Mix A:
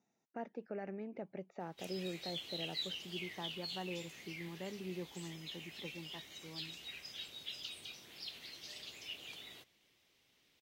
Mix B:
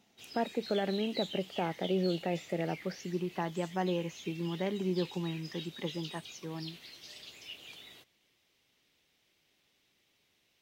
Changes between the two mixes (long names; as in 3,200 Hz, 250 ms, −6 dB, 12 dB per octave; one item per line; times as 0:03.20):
speech +11.5 dB
background: entry −1.60 s